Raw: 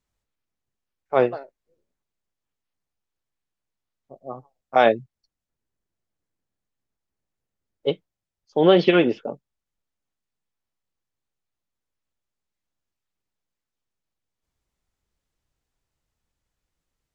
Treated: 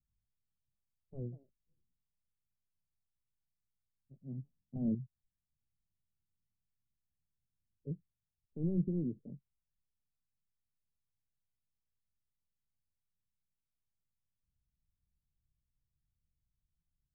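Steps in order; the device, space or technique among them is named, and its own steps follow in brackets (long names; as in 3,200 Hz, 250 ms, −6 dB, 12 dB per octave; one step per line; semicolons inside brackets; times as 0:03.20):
overdriven synthesiser ladder filter (soft clipping −12.5 dBFS, distortion −13 dB; transistor ladder low-pass 210 Hz, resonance 20%)
0:04.21–0:04.95: parametric band 220 Hz +11 dB 1.6 octaves
level +2.5 dB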